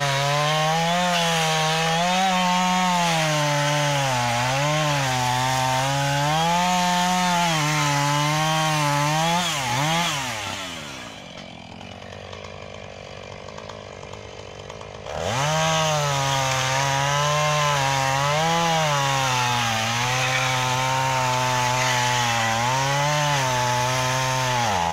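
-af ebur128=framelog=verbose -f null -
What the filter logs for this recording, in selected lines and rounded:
Integrated loudness:
  I:         -20.7 LUFS
  Threshold: -31.5 LUFS
Loudness range:
  LRA:        13.0 LU
  Threshold: -41.6 LUFS
  LRA low:   -33.0 LUFS
  LRA high:  -20.0 LUFS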